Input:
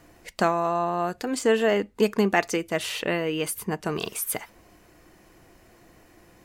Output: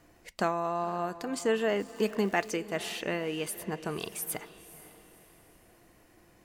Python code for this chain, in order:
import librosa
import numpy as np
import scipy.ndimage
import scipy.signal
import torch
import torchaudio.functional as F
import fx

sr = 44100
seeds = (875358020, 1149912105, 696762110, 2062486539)

y = fx.dmg_crackle(x, sr, seeds[0], per_s=400.0, level_db=-38.0, at=(1.79, 2.49), fade=0.02)
y = fx.echo_diffused(y, sr, ms=502, feedback_pct=41, wet_db=-15.5)
y = y * 10.0 ** (-6.5 / 20.0)